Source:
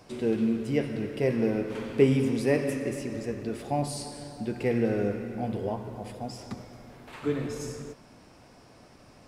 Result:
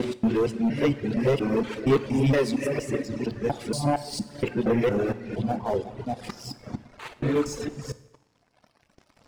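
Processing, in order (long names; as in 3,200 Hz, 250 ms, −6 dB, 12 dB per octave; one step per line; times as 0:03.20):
reversed piece by piece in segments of 233 ms
low-pass filter 7,400 Hz 12 dB per octave
leveller curve on the samples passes 3
reverb reduction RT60 1.8 s
coupled-rooms reverb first 0.8 s, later 2 s, from −23 dB, DRR 13 dB
level −3.5 dB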